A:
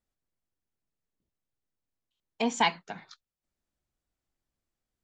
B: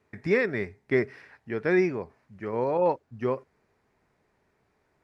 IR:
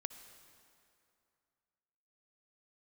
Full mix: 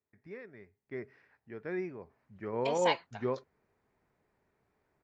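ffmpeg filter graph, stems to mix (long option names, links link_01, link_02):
-filter_complex "[0:a]highpass=490,adelay=250,volume=-6dB[link_01];[1:a]highshelf=frequency=4800:gain=-11.5,volume=-5.5dB,afade=type=in:start_time=0.79:duration=0.33:silence=0.354813,afade=type=in:start_time=1.98:duration=0.31:silence=0.398107[link_02];[link_01][link_02]amix=inputs=2:normalize=0"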